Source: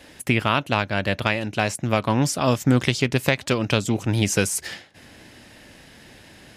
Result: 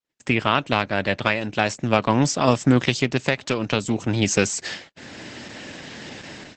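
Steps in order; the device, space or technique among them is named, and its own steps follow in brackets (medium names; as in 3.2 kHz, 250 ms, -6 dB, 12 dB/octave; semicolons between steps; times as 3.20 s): video call (high-pass 120 Hz 12 dB/octave; level rider gain up to 11 dB; gate -42 dBFS, range -52 dB; Opus 12 kbps 48 kHz)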